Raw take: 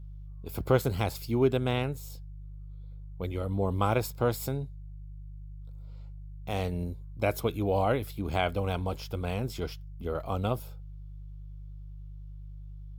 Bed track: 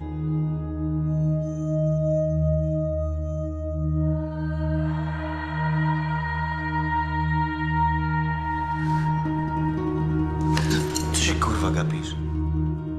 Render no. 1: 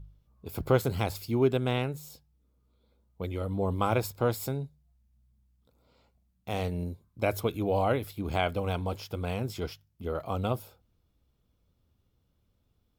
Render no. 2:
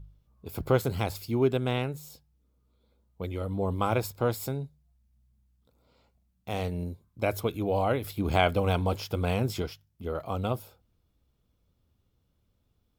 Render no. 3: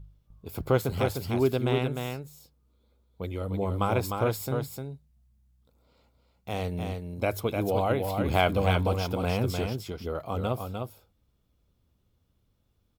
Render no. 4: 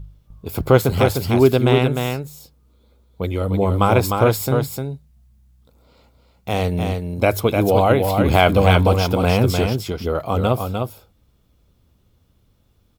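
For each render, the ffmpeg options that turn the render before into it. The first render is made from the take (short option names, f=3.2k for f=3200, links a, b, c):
-af "bandreject=f=50:t=h:w=4,bandreject=f=100:t=h:w=4,bandreject=f=150:t=h:w=4"
-filter_complex "[0:a]asettb=1/sr,asplit=3[a][b][c];[a]atrim=end=8.044[d];[b]atrim=start=8.04:end=9.62,asetpts=PTS-STARTPTS,afade=t=in:d=0.004:c=qsin,afade=t=out:st=1.576:d=0.004:c=qsin,acontrast=22[e];[c]atrim=start=9.616[f];[d][e]acrossfade=d=0.004:c1=hsin:c2=qsin[g];[g][f]acrossfade=d=0.004:c1=qsin:c2=hsin"
-af "aecho=1:1:303:0.562"
-af "volume=11dB,alimiter=limit=-1dB:level=0:latency=1"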